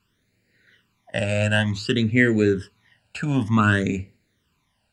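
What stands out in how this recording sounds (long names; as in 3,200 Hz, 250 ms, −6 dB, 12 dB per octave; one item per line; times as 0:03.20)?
phaser sweep stages 12, 0.55 Hz, lowest notch 340–1,100 Hz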